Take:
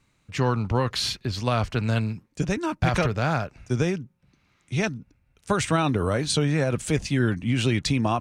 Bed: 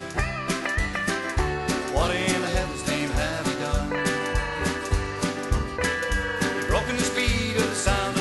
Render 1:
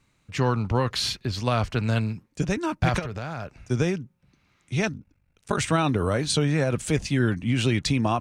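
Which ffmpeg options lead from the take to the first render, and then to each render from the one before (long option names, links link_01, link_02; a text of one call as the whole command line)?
ffmpeg -i in.wav -filter_complex "[0:a]asplit=3[link_01][link_02][link_03];[link_01]afade=type=out:start_time=2.98:duration=0.02[link_04];[link_02]acompressor=threshold=-28dB:ratio=6:attack=3.2:release=140:knee=1:detection=peak,afade=type=in:start_time=2.98:duration=0.02,afade=type=out:start_time=3.57:duration=0.02[link_05];[link_03]afade=type=in:start_time=3.57:duration=0.02[link_06];[link_04][link_05][link_06]amix=inputs=3:normalize=0,asettb=1/sr,asplit=3[link_07][link_08][link_09];[link_07]atrim=end=4.924[link_10];[link_08]atrim=start=4.92:end=5.58,asetpts=PTS-STARTPTS,afade=type=in:duration=0.004:curve=qsin,afade=type=out:start_time=0.656:duration=0.004:curve=qsin,aeval=exprs='val(0)*sin(2*PI*24*n/s)':channel_layout=same[link_11];[link_09]atrim=start=5.576[link_12];[link_10][link_11]acrossfade=duration=0.004:curve1=hsin:curve2=qsin[link_13];[link_13][link_12]acrossfade=duration=0.004:curve1=qsin:curve2=hsin" out.wav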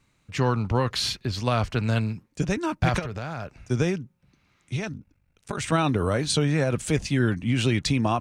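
ffmpeg -i in.wav -filter_complex "[0:a]asettb=1/sr,asplit=3[link_01][link_02][link_03];[link_01]atrim=end=4.764[link_04];[link_02]atrim=start=4.76:end=5.72,asetpts=PTS-STARTPTS,afade=type=in:duration=0.004:curve=qsin,afade=type=out:start_time=0.956:duration=0.004:curve=qsin,acompressor=threshold=-25dB:ratio=6:attack=3.2:release=140:knee=1:detection=peak[link_05];[link_03]atrim=start=5.716[link_06];[link_04][link_05]acrossfade=duration=0.004:curve1=hsin:curve2=qsin[link_07];[link_07][link_06]acrossfade=duration=0.004:curve1=qsin:curve2=hsin" out.wav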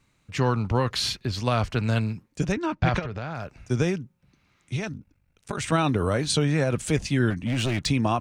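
ffmpeg -i in.wav -filter_complex "[0:a]asettb=1/sr,asplit=3[link_01][link_02][link_03];[link_01]atrim=end=2.524[link_04];[link_02]atrim=start=2.52:end=3.35,asetpts=PTS-STARTPTS,afade=type=in:duration=0.004:curve=qsin,afade=type=out:start_time=0.826:duration=0.004:curve=qsin,lowpass=4400[link_05];[link_03]atrim=start=3.346[link_06];[link_04][link_05]acrossfade=duration=0.004:curve1=hsin:curve2=qsin[link_07];[link_07][link_06]acrossfade=duration=0.004:curve1=qsin:curve2=hsin,asettb=1/sr,asplit=3[link_08][link_09][link_10];[link_08]atrim=end=7.304[link_11];[link_09]atrim=start=7.3:end=7.86,asetpts=PTS-STARTPTS,afade=type=in:duration=0.004:curve=qsin,afade=type=out:start_time=0.556:duration=0.004:curve=qsin,volume=21.5dB,asoftclip=hard,volume=-21.5dB[link_12];[link_10]atrim=start=7.856[link_13];[link_11][link_12]acrossfade=duration=0.004:curve1=hsin:curve2=qsin[link_14];[link_14][link_13]acrossfade=duration=0.004:curve1=qsin:curve2=hsin" out.wav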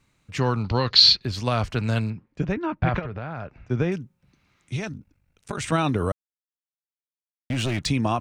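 ffmpeg -i in.wav -filter_complex "[0:a]asettb=1/sr,asplit=3[link_01][link_02][link_03];[link_01]atrim=end=0.644[link_04];[link_02]atrim=start=0.64:end=1.22,asetpts=PTS-STARTPTS,afade=type=in:duration=0.004:curve=qsin,afade=type=out:start_time=0.576:duration=0.004:curve=qsin,lowpass=frequency=4400:width_type=q:width=6.6[link_05];[link_03]atrim=start=1.216[link_06];[link_04][link_05]acrossfade=duration=0.004:curve1=hsin:curve2=qsin[link_07];[link_07][link_06]acrossfade=duration=0.004:curve1=qsin:curve2=hsin,asettb=1/sr,asplit=3[link_08][link_09][link_10];[link_08]atrim=end=2.104[link_11];[link_09]atrim=start=2.1:end=3.92,asetpts=PTS-STARTPTS,afade=type=in:duration=0.004:curve=qsin,afade=type=out:start_time=1.816:duration=0.004:curve=qsin,lowpass=2500[link_12];[link_10]atrim=start=3.916[link_13];[link_11][link_12]acrossfade=duration=0.004:curve1=hsin:curve2=qsin[link_14];[link_14][link_13]acrossfade=duration=0.004:curve1=qsin:curve2=hsin,asplit=3[link_15][link_16][link_17];[link_15]atrim=end=6.12,asetpts=PTS-STARTPTS,afade=type=out:start_time=6.116:duration=0.004:curve=hsin[link_18];[link_16]atrim=start=6.12:end=7.5,asetpts=PTS-STARTPTS,volume=0[link_19];[link_17]atrim=start=7.5,asetpts=PTS-STARTPTS,afade=type=in:duration=0.004:curve=hsin[link_20];[link_18][link_19][link_20]concat=n=3:v=0:a=1" out.wav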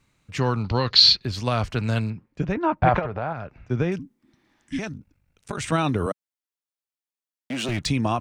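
ffmpeg -i in.wav -filter_complex "[0:a]asettb=1/sr,asplit=3[link_01][link_02][link_03];[link_01]atrim=end=2.554[link_04];[link_02]atrim=start=2.55:end=3.33,asetpts=PTS-STARTPTS,afade=type=in:duration=0.004:curve=qsin,afade=type=out:start_time=0.776:duration=0.004:curve=qsin,equalizer=frequency=770:width_type=o:width=1.5:gain=10[link_05];[link_03]atrim=start=3.326[link_06];[link_04][link_05]acrossfade=duration=0.004:curve1=hsin:curve2=qsin[link_07];[link_07][link_06]acrossfade=duration=0.004:curve1=qsin:curve2=hsin,asettb=1/sr,asplit=3[link_08][link_09][link_10];[link_08]atrim=end=3.994[link_11];[link_09]atrim=start=3.99:end=4.79,asetpts=PTS-STARTPTS,afade=type=in:duration=0.004:curve=qsin,afade=type=out:start_time=0.796:duration=0.004:curve=qsin,afreqshift=-400[link_12];[link_10]atrim=start=4.786[link_13];[link_11][link_12]acrossfade=duration=0.004:curve1=hsin:curve2=qsin[link_14];[link_14][link_13]acrossfade=duration=0.004:curve1=qsin:curve2=hsin,asettb=1/sr,asplit=3[link_15][link_16][link_17];[link_15]atrim=end=6.064[link_18];[link_16]atrim=start=6.06:end=7.69,asetpts=PTS-STARTPTS,afade=type=in:duration=0.004:curve=qsin,afade=type=out:start_time=1.626:duration=0.004:curve=qsin,highpass=frequency=190:width=0.5412,highpass=frequency=190:width=1.3066[link_19];[link_17]atrim=start=7.686[link_20];[link_18][link_19]acrossfade=duration=0.004:curve1=hsin:curve2=qsin[link_21];[link_21][link_20]acrossfade=duration=0.004:curve1=qsin:curve2=hsin" out.wav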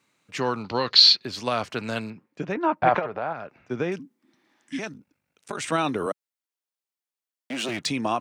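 ffmpeg -i in.wav -af "highpass=260" out.wav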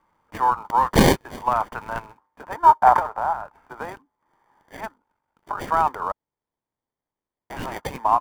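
ffmpeg -i in.wav -filter_complex "[0:a]highpass=frequency=910:width_type=q:width=5.5,acrossover=split=1900[link_01][link_02];[link_02]acrusher=samples=33:mix=1:aa=0.000001[link_03];[link_01][link_03]amix=inputs=2:normalize=0" out.wav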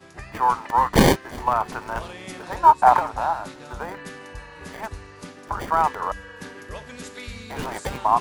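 ffmpeg -i in.wav -i bed.wav -filter_complex "[1:a]volume=-13.5dB[link_01];[0:a][link_01]amix=inputs=2:normalize=0" out.wav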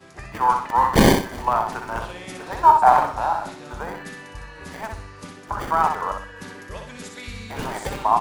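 ffmpeg -i in.wav -af "aecho=1:1:62|124|186|248:0.531|0.165|0.051|0.0158" out.wav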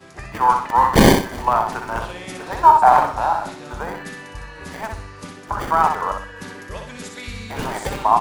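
ffmpeg -i in.wav -af "volume=3dB,alimiter=limit=-1dB:level=0:latency=1" out.wav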